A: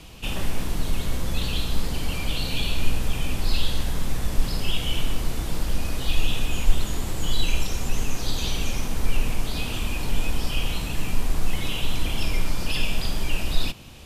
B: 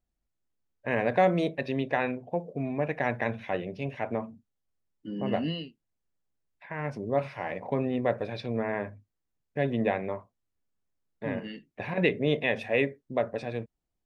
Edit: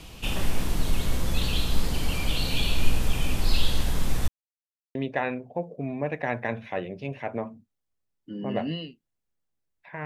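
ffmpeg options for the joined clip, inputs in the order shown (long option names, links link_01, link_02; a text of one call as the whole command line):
ffmpeg -i cue0.wav -i cue1.wav -filter_complex "[0:a]apad=whole_dur=10.05,atrim=end=10.05,asplit=2[link_01][link_02];[link_01]atrim=end=4.28,asetpts=PTS-STARTPTS,afade=type=out:start_time=4.276:duration=0.004:curve=hsin[link_03];[link_02]atrim=start=4.28:end=4.95,asetpts=PTS-STARTPTS,volume=0[link_04];[1:a]atrim=start=1.72:end=6.82,asetpts=PTS-STARTPTS,afade=type=in:duration=0.004:curve=hsin[link_05];[link_03][link_04][link_05]concat=n=3:v=0:a=1" out.wav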